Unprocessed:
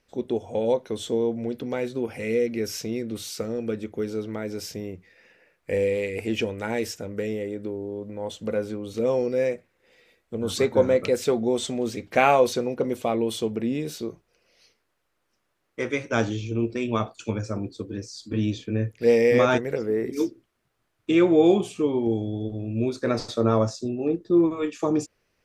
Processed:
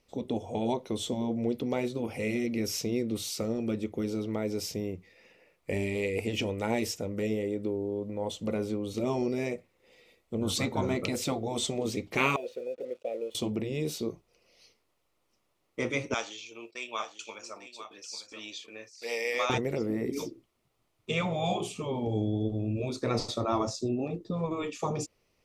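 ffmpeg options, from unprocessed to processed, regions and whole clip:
-filter_complex "[0:a]asettb=1/sr,asplit=3[a][b][c];[a]atrim=end=12.364[d];[b]atrim=start=12.36:end=13.35,asetpts=PTS-STARTPTS,afade=t=in:d=0.004:c=qsin,afade=t=out:st=0.986:d=0.004:c=qsin,asplit=3[e][f][g];[e]bandpass=f=530:t=q:w=8,volume=0dB[h];[f]bandpass=f=1.84k:t=q:w=8,volume=-6dB[i];[g]bandpass=f=2.48k:t=q:w=8,volume=-9dB[j];[h][i][j]amix=inputs=3:normalize=0,aeval=exprs='sgn(val(0))*max(abs(val(0))-0.00141,0)':c=same[k];[c]atrim=start=13.346[l];[d][k]acrossfade=d=0.004:c1=hsin:c2=qsin[m];[m][l]acrossfade=d=0.004:c1=qsin:c2=hsin,asettb=1/sr,asplit=3[n][o][p];[n]atrim=end=16.144[q];[o]atrim=start=16.14:end=19.5,asetpts=PTS-STARTPTS,afade=t=in:d=0.004:c=qsin,afade=t=out:st=3.356:d=0.004:c=qsin,highpass=1.1k,agate=range=-14dB:threshold=-55dB:ratio=16:release=100:detection=peak,aecho=1:1:847:0.266,atrim=end_sample=148176[r];[p]atrim=start=19.496[s];[q][r]acrossfade=d=0.004:c1=hsin:c2=qsin[t];[t][s]acrossfade=d=0.004:c1=qsin:c2=hsin,afftfilt=real='re*lt(hypot(re,im),0.398)':imag='im*lt(hypot(re,im),0.398)':win_size=1024:overlap=0.75,equalizer=f=1.6k:w=4.4:g=-13"

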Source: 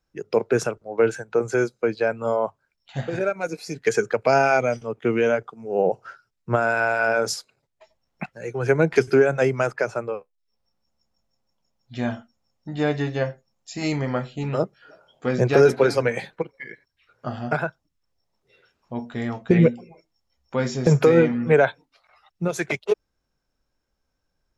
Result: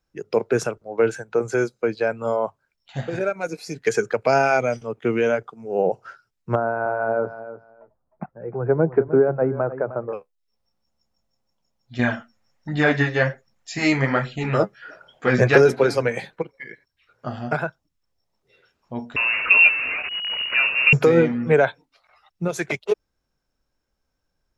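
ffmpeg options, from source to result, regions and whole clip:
-filter_complex "[0:a]asettb=1/sr,asplit=3[a][b][c];[a]atrim=end=6.554[d];[b]atrim=start=6.55:end=10.13,asetpts=PTS-STARTPTS,afade=t=in:d=0.004:c=qsin,afade=t=out:st=3.576:d=0.004:c=qsin,lowpass=f=1.2k:w=0.5412,lowpass=f=1.2k:w=1.3066,aecho=1:1:307|614:0.211|0.0338,atrim=end_sample=157878[e];[c]atrim=start=10.126[f];[d][e]acrossfade=d=0.004:c1=hsin:c2=qsin[g];[g][f]acrossfade=d=0.004:c1=qsin:c2=hsin,asettb=1/sr,asplit=3[h][i][j];[h]atrim=end=11.994[k];[i]atrim=start=11.99:end=15.58,asetpts=PTS-STARTPTS,afade=t=in:d=0.004:c=qsin,afade=t=out:st=3.586:d=0.004:c=qsin,equalizer=f=1.8k:w=1.3:g=10,flanger=delay=0.2:depth=9.5:regen=35:speed=1.3:shape=sinusoidal,acontrast=72[l];[j]atrim=start=15.576[m];[k][l]acrossfade=d=0.004:c1=hsin:c2=qsin[n];[n][m]acrossfade=d=0.004:c1=qsin:c2=hsin,asettb=1/sr,asplit=3[o][p][q];[o]atrim=end=19.164[r];[p]atrim=start=19.16:end=20.93,asetpts=PTS-STARTPTS,afade=t=in:d=0.004:c=qsin,afade=t=out:st=1.766:d=0.004:c=qsin,aeval=exprs='val(0)+0.5*0.1*sgn(val(0))':c=same,bandreject=f=2.1k:w=18,lowpass=f=2.5k:t=q:w=0.5098,lowpass=f=2.5k:t=q:w=0.6013,lowpass=f=2.5k:t=q:w=0.9,lowpass=f=2.5k:t=q:w=2.563,afreqshift=-2900[s];[q]atrim=start=20.926[t];[r][s]acrossfade=d=0.004:c1=hsin:c2=qsin[u];[u][t]acrossfade=d=0.004:c1=qsin:c2=hsin"

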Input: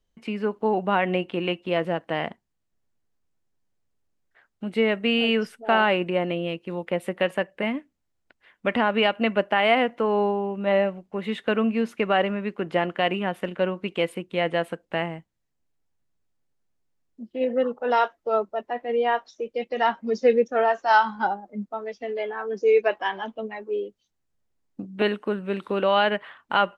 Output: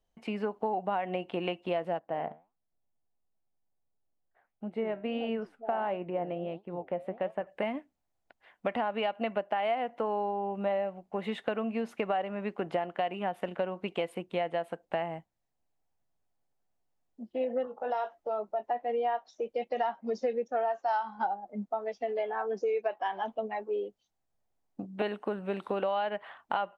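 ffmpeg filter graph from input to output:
-filter_complex "[0:a]asettb=1/sr,asplit=3[a][b][c];[a]atrim=end=1.994[d];[b]atrim=start=1.99:end=7.47,asetpts=PTS-STARTPTS,afade=t=in:d=0.004:c=qsin,afade=t=out:st=5.476:d=0.004:c=qsin,lowpass=f=1k:p=1,flanger=delay=4.5:depth=8.8:regen=78:speed=1.5:shape=sinusoidal[e];[c]atrim=start=7.466[f];[d][e]acrossfade=d=0.004:c1=hsin:c2=qsin[g];[g][f]acrossfade=d=0.004:c1=qsin:c2=hsin,asettb=1/sr,asplit=3[h][i][j];[h]atrim=end=17.654[k];[i]atrim=start=17.65:end=18.66,asetpts=PTS-STARTPTS,afade=t=in:d=0.004:c=qsin,afade=t=out:st=1.006:d=0.004:c=qsin,acompressor=threshold=-34dB:ratio=2:attack=3.2:release=140:knee=1:detection=peak,asplit=2[l][m];[m]adelay=19,volume=-8.5dB[n];[l][n]amix=inputs=2:normalize=0,atrim=end_sample=44541[o];[j]atrim=start=18.656[p];[k][o]acrossfade=d=0.004:c1=hsin:c2=qsin[q];[q][p]acrossfade=d=0.004:c1=qsin:c2=hsin,equalizer=f=740:w=1.8:g=11,acompressor=threshold=-23dB:ratio=6,volume=-5dB"

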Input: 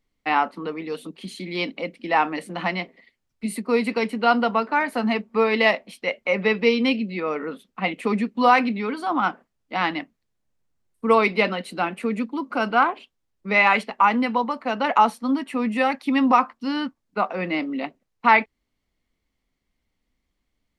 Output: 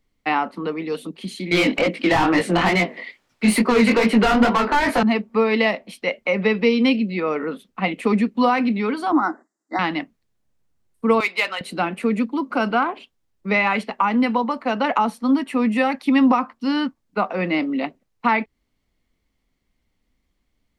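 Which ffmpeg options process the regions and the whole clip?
-filter_complex "[0:a]asettb=1/sr,asplit=3[a][b][c];[a]atrim=end=1.514[d];[b]atrim=start=1.51:end=5.03,asetpts=PTS-STARTPTS,afade=t=in:d=0.004:c=qsin,afade=t=out:st=3.516:d=0.004:c=qsin,asplit=2[e][f];[f]highpass=f=720:p=1,volume=28dB,asoftclip=type=tanh:threshold=-5dB[g];[e][g]amix=inputs=2:normalize=0,lowpass=f=2.9k:p=1,volume=-6dB,flanger=delay=17:depth=7:speed=2.3[h];[c]atrim=start=5.026[i];[d][h]acrossfade=d=0.004:c1=hsin:c2=qsin[j];[j][i]acrossfade=d=0.004:c1=qsin:c2=hsin,asettb=1/sr,asplit=3[k][l][m];[k]atrim=end=9.124[n];[l]atrim=start=9.12:end=9.79,asetpts=PTS-STARTPTS,afade=t=in:d=0.004:c=qsin,afade=t=out:st=0.666:d=0.004:c=qsin,asuperstop=centerf=2800:order=20:qfactor=1.7,highpass=f=260:w=0.5412,highpass=f=260:w=1.3066,equalizer=f=320:t=q:w=4:g=9,equalizer=f=490:t=q:w=4:g=-8,equalizer=f=4.2k:t=q:w=4:g=-9,equalizer=f=7.3k:t=q:w=4:g=9,lowpass=f=9.2k:w=0.5412,lowpass=f=9.2k:w=1.3066[o];[m]atrim=start=9.786[p];[n][o]acrossfade=d=0.004:c1=hsin:c2=qsin[q];[q][p]acrossfade=d=0.004:c1=qsin:c2=hsin,asettb=1/sr,asplit=3[r][s][t];[r]atrim=end=11.204[u];[s]atrim=start=11.2:end=11.61,asetpts=PTS-STARTPTS,afade=t=in:d=0.004:c=qsin,afade=t=out:st=0.406:d=0.004:c=qsin,highpass=880,highshelf=f=2.5k:g=6,adynamicsmooth=sensitivity=3.5:basefreq=4.8k[v];[t]atrim=start=11.606[w];[u][v]acrossfade=d=0.004:c1=hsin:c2=qsin[x];[x][w]acrossfade=d=0.004:c1=qsin:c2=hsin,lowshelf=f=390:g=2.5,acrossover=split=330[y][z];[z]acompressor=threshold=-21dB:ratio=3[aa];[y][aa]amix=inputs=2:normalize=0,volume=3dB"

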